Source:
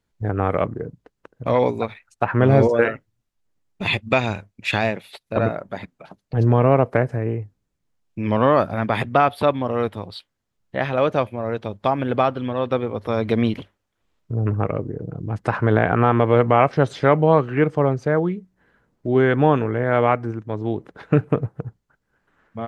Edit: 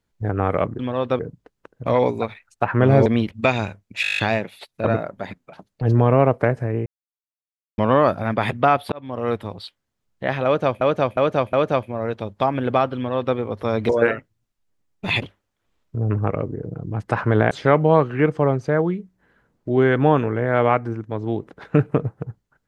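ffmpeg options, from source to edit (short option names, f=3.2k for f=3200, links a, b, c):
-filter_complex "[0:a]asplit=22[a][b][c][d][e][f][g][h][i][j][k][l][m][n][o][p][q][r][s][t][u][v];[a]atrim=end=0.792[w];[b]atrim=start=12.398:end=12.802[x];[c]atrim=start=0.788:end=2.662[y];[d]atrim=start=13.328:end=13.582[z];[e]atrim=start=3.988:end=4.722[aa];[f]atrim=start=4.698:end=4.722[ab];[g]atrim=start=4.698:end=4.722[ac];[h]atrim=start=4.698:end=4.722[ad];[i]atrim=start=4.698:end=4.722[ae];[j]atrim=start=4.698:end=4.722[af];[k]atrim=start=4.698:end=4.722[ag];[l]atrim=start=4.698:end=4.722[ah];[m]atrim=start=4.698:end=7.38,asetpts=PTS-STARTPTS,afade=t=out:st=2.678:d=0.004:c=hsin[ai];[n]atrim=start=7.38:end=8.3,asetpts=PTS-STARTPTS,volume=0[aj];[o]atrim=start=8.3:end=9.44,asetpts=PTS-STARTPTS,afade=t=in:d=0.004:c=hsin,afade=t=out:st=1.136:d=0.004:c=hsin[ak];[p]atrim=start=9.44:end=11.332,asetpts=PTS-STARTPTS,afade=t=in:d=0.4[al];[q]atrim=start=10.968:end=11.332[am];[r]atrim=start=10.968:end=11.332[an];[s]atrim=start=10.968:end=13.332[ao];[t]atrim=start=2.658:end=3.992[ap];[u]atrim=start=13.578:end=15.872[aq];[v]atrim=start=16.888[ar];[w][x]acrossfade=d=0.004:c1=hsin:c2=hsin[as];[as][y]acrossfade=d=0.004:c1=hsin:c2=hsin[at];[at][z]acrossfade=d=0.004:c1=hsin:c2=hsin[au];[au][aa]acrossfade=d=0.004:c1=hsin:c2=hsin[av];[av][ab]acrossfade=d=0.004:c1=hsin:c2=hsin[aw];[aw][ac]acrossfade=d=0.004:c1=hsin:c2=hsin[ax];[ax][ad]acrossfade=d=0.004:c1=hsin:c2=hsin[ay];[ay][ae]acrossfade=d=0.004:c1=hsin:c2=hsin[az];[az][af]acrossfade=d=0.004:c1=hsin:c2=hsin[ba];[ba][ag]acrossfade=d=0.004:c1=hsin:c2=hsin[bb];[bb][ah]acrossfade=d=0.004:c1=hsin:c2=hsin[bc];[ai][aj][ak][al]concat=n=4:v=0:a=1[bd];[bc][bd]acrossfade=d=0.004:c1=hsin:c2=hsin[be];[be][am]acrossfade=d=0.004:c1=hsin:c2=hsin[bf];[bf][an]acrossfade=d=0.004:c1=hsin:c2=hsin[bg];[bg][ao]acrossfade=d=0.004:c1=hsin:c2=hsin[bh];[bh][ap]acrossfade=d=0.004:c1=hsin:c2=hsin[bi];[bi][aq]acrossfade=d=0.004:c1=hsin:c2=hsin[bj];[bj][ar]acrossfade=d=0.004:c1=hsin:c2=hsin"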